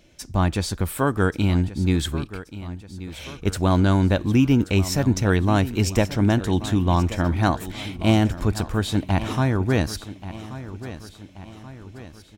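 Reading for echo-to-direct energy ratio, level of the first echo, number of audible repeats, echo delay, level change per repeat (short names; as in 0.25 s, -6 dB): -13.0 dB, -14.5 dB, 4, 1.131 s, -6.0 dB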